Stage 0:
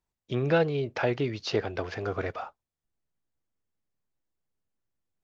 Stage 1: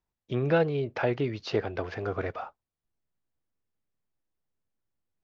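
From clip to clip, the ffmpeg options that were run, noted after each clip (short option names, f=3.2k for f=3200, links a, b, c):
-af "lowpass=f=3k:p=1"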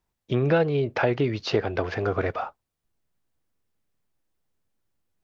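-af "acompressor=threshold=-27dB:ratio=2,volume=7dB"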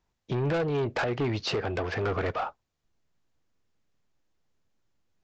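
-af "alimiter=limit=-14.5dB:level=0:latency=1:release=264,aresample=16000,asoftclip=type=tanh:threshold=-26dB,aresample=44100,volume=2.5dB"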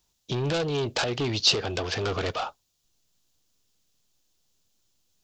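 -af "aexciter=amount=5.1:drive=4.5:freq=2.9k"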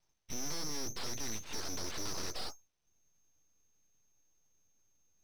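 -af "aeval=exprs='(tanh(63.1*val(0)+0.35)-tanh(0.35))/63.1':c=same,lowpass=f=2.7k:t=q:w=0.5098,lowpass=f=2.7k:t=q:w=0.6013,lowpass=f=2.7k:t=q:w=0.9,lowpass=f=2.7k:t=q:w=2.563,afreqshift=-3200,aeval=exprs='abs(val(0))':c=same,volume=1.5dB"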